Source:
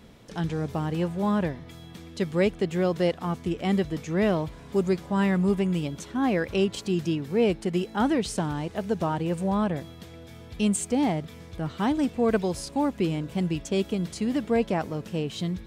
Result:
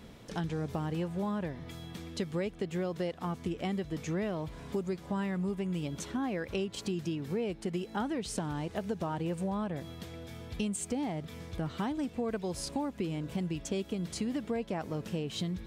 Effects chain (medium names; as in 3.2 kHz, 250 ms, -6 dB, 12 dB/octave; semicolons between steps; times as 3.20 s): compression 6:1, threshold -31 dBFS, peak gain reduction 12.5 dB